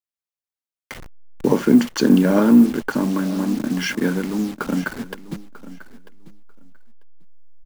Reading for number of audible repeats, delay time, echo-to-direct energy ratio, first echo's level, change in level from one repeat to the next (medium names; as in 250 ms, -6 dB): 2, 943 ms, -17.0 dB, -17.0 dB, -16.0 dB